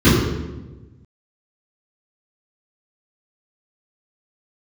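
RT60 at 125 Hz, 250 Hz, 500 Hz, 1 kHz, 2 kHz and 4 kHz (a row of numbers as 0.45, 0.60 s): 1.8, 1.5, 1.3, 1.0, 0.90, 0.80 s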